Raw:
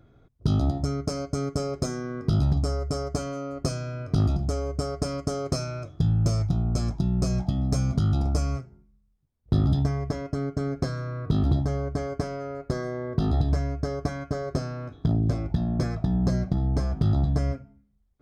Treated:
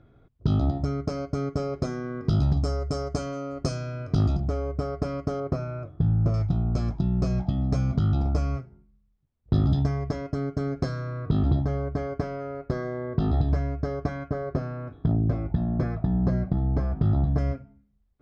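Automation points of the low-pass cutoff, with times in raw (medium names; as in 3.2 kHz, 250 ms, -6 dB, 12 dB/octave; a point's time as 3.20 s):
3.6 kHz
from 2.25 s 6.2 kHz
from 4.40 s 2.8 kHz
from 5.40 s 1.6 kHz
from 6.34 s 3.5 kHz
from 9.54 s 5.5 kHz
from 11.29 s 3.3 kHz
from 14.28 s 2.2 kHz
from 17.38 s 3.9 kHz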